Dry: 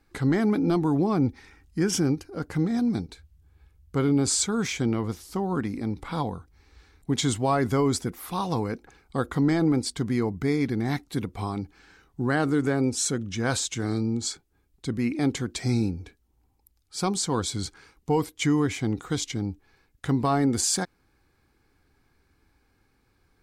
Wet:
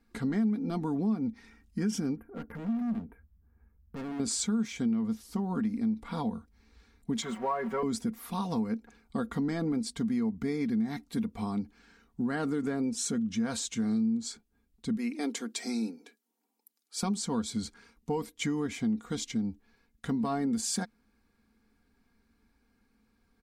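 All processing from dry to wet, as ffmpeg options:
ffmpeg -i in.wav -filter_complex "[0:a]asettb=1/sr,asplit=3[link_01][link_02][link_03];[link_01]atrim=end=2.164[link_04];[link_02]atrim=start=2.16:end=4.2,asetpts=PTS-STARTPTS,afade=type=in:duration=0.004:curve=qsin,afade=type=out:start_time=2.036:duration=0.004:curve=qsin,asuperstop=centerf=5300:order=8:qfactor=0.52,asoftclip=type=hard:threshold=-32dB[link_05];[link_03]atrim=start=4.196[link_06];[link_04][link_05]acrossfade=duration=0.004:curve1=hsin:curve2=qsin[link_07];[link_07][link_06]acrossfade=duration=0.004:curve1=qsin:curve2=hsin,asettb=1/sr,asplit=3[link_08][link_09][link_10];[link_08]atrim=end=7.224[link_11];[link_09]atrim=start=7.22:end=7.83,asetpts=PTS-STARTPTS,afade=type=in:duration=0.004:curve=qsin,afade=type=out:start_time=0.606:duration=0.004:curve=qsin,aeval=exprs='val(0)+0.5*0.0299*sgn(val(0))':channel_layout=same,acrossover=split=400 2300:gain=0.158 1 0.0891[link_12][link_13][link_14];[link_12][link_13][link_14]amix=inputs=3:normalize=0,aecho=1:1:5.3:0.85,atrim=end_sample=26901[link_15];[link_10]atrim=start=7.826[link_16];[link_11][link_15]acrossfade=duration=0.004:curve1=hsin:curve2=qsin[link_17];[link_17][link_16]acrossfade=duration=0.004:curve1=qsin:curve2=hsin,asettb=1/sr,asplit=3[link_18][link_19][link_20];[link_18]atrim=end=14.974[link_21];[link_19]atrim=start=14.97:end=17.03,asetpts=PTS-STARTPTS,afade=type=in:duration=0.004:curve=qsin,afade=type=out:start_time=2.056:duration=0.004:curve=qsin,highpass=frequency=300:width=0.5412,highpass=frequency=300:width=1.3066,highshelf=frequency=5000:gain=6[link_22];[link_20]atrim=start=17.026[link_23];[link_21][link_22]acrossfade=duration=0.004:curve1=hsin:curve2=qsin[link_24];[link_24][link_23]acrossfade=duration=0.004:curve1=qsin:curve2=hsin,equalizer=frequency=220:width=6:gain=14.5,aecho=1:1:4.3:0.46,acompressor=threshold=-21dB:ratio=4,volume=-6.5dB" out.wav

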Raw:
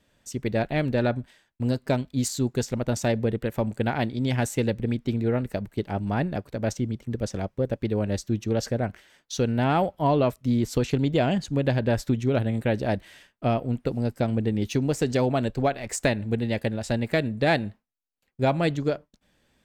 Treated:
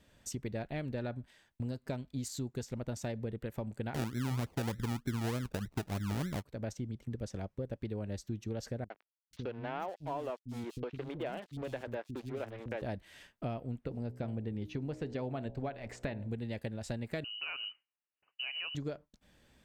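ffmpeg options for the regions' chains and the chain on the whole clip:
ffmpeg -i in.wav -filter_complex "[0:a]asettb=1/sr,asplit=3[link_01][link_02][link_03];[link_01]atrim=end=3.944[link_04];[link_02]atrim=start=3.94:end=6.43,asetpts=PTS-STARTPTS,afade=type=in:duration=0.004:curve=qsin,afade=type=out:start_time=2.486:duration=0.004:curve=qsin,tiltshelf=frequency=1400:gain=10,acrusher=samples=33:mix=1:aa=0.000001:lfo=1:lforange=19.8:lforate=3.3[link_05];[link_03]atrim=start=6.426[link_06];[link_04][link_05]acrossfade=duration=0.004:curve1=hsin:curve2=qsin[link_07];[link_07][link_06]acrossfade=duration=0.004:curve1=qsin:curve2=hsin,asettb=1/sr,asplit=3[link_08][link_09][link_10];[link_08]atrim=end=8.844[link_11];[link_09]atrim=start=8.84:end=12.82,asetpts=PTS-STARTPTS,afade=type=in:duration=0.004:curve=qsin,afade=type=out:start_time=3.976:duration=0.004:curve=qsin,bass=frequency=250:gain=-12,treble=frequency=4000:gain=-10,aeval=exprs='sgn(val(0))*max(abs(val(0))-0.0119,0)':channel_layout=same,acrossover=split=250|4200[link_12][link_13][link_14];[link_13]adelay=60[link_15];[link_14]adelay=490[link_16];[link_12][link_15][link_16]amix=inputs=3:normalize=0,atrim=end_sample=175518[link_17];[link_10]atrim=start=12.816[link_18];[link_11][link_17]acrossfade=duration=0.004:curve1=hsin:curve2=qsin[link_19];[link_19][link_18]acrossfade=duration=0.004:curve1=qsin:curve2=hsin,asettb=1/sr,asplit=3[link_20][link_21][link_22];[link_20]atrim=end=13.794[link_23];[link_21]atrim=start=13.79:end=16.29,asetpts=PTS-STARTPTS,afade=type=in:duration=0.004:curve=qsin,afade=type=out:start_time=2.496:duration=0.004:curve=qsin,highshelf=frequency=5000:gain=-6,bandreject=frequency=61.77:width_type=h:width=4,bandreject=frequency=123.54:width_type=h:width=4,bandreject=frequency=185.31:width_type=h:width=4,bandreject=frequency=247.08:width_type=h:width=4,bandreject=frequency=308.85:width_type=h:width=4,bandreject=frequency=370.62:width_type=h:width=4,bandreject=frequency=432.39:width_type=h:width=4,bandreject=frequency=494.16:width_type=h:width=4,bandreject=frequency=555.93:width_type=h:width=4,bandreject=frequency=617.7:width_type=h:width=4,bandreject=frequency=679.47:width_type=h:width=4,bandreject=frequency=741.24:width_type=h:width=4,bandreject=frequency=803.01:width_type=h:width=4,bandreject=frequency=864.78:width_type=h:width=4,bandreject=frequency=926.55:width_type=h:width=4,bandreject=frequency=988.32:width_type=h:width=4,acrossover=split=4200[link_24][link_25];[link_25]acompressor=threshold=-56dB:ratio=4:attack=1:release=60[link_26];[link_24][link_26]amix=inputs=2:normalize=0[link_27];[link_22]atrim=start=16.286[link_28];[link_23][link_27]acrossfade=duration=0.004:curve1=hsin:curve2=qsin[link_29];[link_29][link_28]acrossfade=duration=0.004:curve1=qsin:curve2=hsin,asettb=1/sr,asplit=3[link_30][link_31][link_32];[link_30]atrim=end=17.244[link_33];[link_31]atrim=start=17.24:end=18.75,asetpts=PTS-STARTPTS,afade=type=in:duration=0.004:curve=qsin,afade=type=out:start_time=1.506:duration=0.004:curve=qsin,highpass=100,acompressor=threshold=-27dB:ratio=5:attack=3.2:release=140:knee=1:detection=peak,lowpass=frequency=2600:width_type=q:width=0.5098,lowpass=frequency=2600:width_type=q:width=0.6013,lowpass=frequency=2600:width_type=q:width=0.9,lowpass=frequency=2600:width_type=q:width=2.563,afreqshift=-3100[link_34];[link_32]atrim=start=18.746[link_35];[link_33][link_34]acrossfade=duration=0.004:curve1=hsin:curve2=qsin[link_36];[link_36][link_35]acrossfade=duration=0.004:curve1=qsin:curve2=hsin,equalizer=frequency=62:width_type=o:width=2.3:gain=4,acompressor=threshold=-40dB:ratio=3" out.wav

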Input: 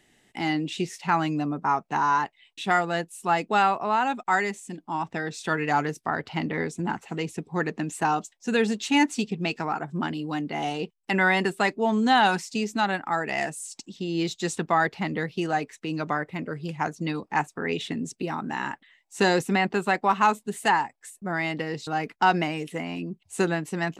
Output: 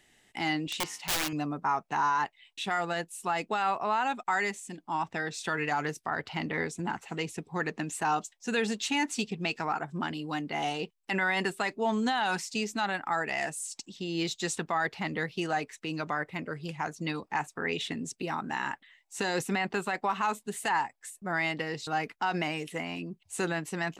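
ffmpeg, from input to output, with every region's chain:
ffmpeg -i in.wav -filter_complex "[0:a]asettb=1/sr,asplit=3[link_01][link_02][link_03];[link_01]atrim=end=0.674[link_04];[link_02]atrim=start=0.67:end=1.33,asetpts=PTS-STARTPTS,afade=type=in:duration=0.004:curve=qsin,afade=type=out:start_time=0.656:duration=0.004:curve=qsin,lowshelf=frequency=180:gain=-10,aeval=exprs='(mod(13.3*val(0)+1,2)-1)/13.3':channel_layout=same,bandreject=frequency=95.44:width_type=h:width=4,bandreject=frequency=190.88:width_type=h:width=4,bandreject=frequency=286.32:width_type=h:width=4,bandreject=frequency=381.76:width_type=h:width=4,bandreject=frequency=477.2:width_type=h:width=4,bandreject=frequency=572.64:width_type=h:width=4,bandreject=frequency=668.08:width_type=h:width=4,bandreject=frequency=763.52:width_type=h:width=4,bandreject=frequency=858.96:width_type=h:width=4,bandreject=frequency=954.4:width_type=h:width=4,bandreject=frequency=1049.84:width_type=h:width=4,bandreject=frequency=1145.28:width_type=h:width=4,bandreject=frequency=1240.72:width_type=h:width=4,bandreject=frequency=1336.16:width_type=h:width=4,bandreject=frequency=1431.6:width_type=h:width=4,bandreject=frequency=1527.04:width_type=h:width=4,bandreject=frequency=1622.48:width_type=h:width=4,bandreject=frequency=1717.92:width_type=h:width=4,bandreject=frequency=1813.36:width_type=h:width=4,bandreject=frequency=1908.8:width_type=h:width=4,bandreject=frequency=2004.24:width_type=h:width=4,bandreject=frequency=2099.68:width_type=h:width=4,bandreject=frequency=2195.12:width_type=h:width=4,bandreject=frequency=2290.56:width_type=h:width=4,bandreject=frequency=2386:width_type=h:width=4,bandreject=frequency=2481.44:width_type=h:width=4,bandreject=frequency=2576.88:width_type=h:width=4,bandreject=frequency=2672.32:width_type=h:width=4,bandreject=frequency=2767.76:width_type=h:width=4,bandreject=frequency=2863.2:width_type=h:width=4,bandreject=frequency=2958.64:width_type=h:width=4,bandreject=frequency=3054.08:width_type=h:width=4,bandreject=frequency=3149.52:width_type=h:width=4,bandreject=frequency=3244.96:width_type=h:width=4[link_05];[link_03]atrim=start=1.326[link_06];[link_04][link_05]acrossfade=duration=0.004:curve1=hsin:curve2=qsin[link_07];[link_07][link_06]acrossfade=duration=0.004:curve1=qsin:curve2=hsin,equalizer=frequency=230:width_type=o:width=2.8:gain=-6,alimiter=limit=-19dB:level=0:latency=1:release=42" out.wav

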